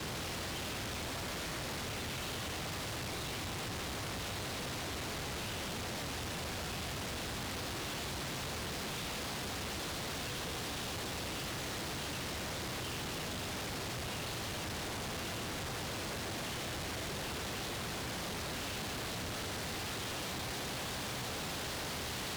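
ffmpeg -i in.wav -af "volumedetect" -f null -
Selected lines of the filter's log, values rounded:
mean_volume: -39.7 dB
max_volume: -36.1 dB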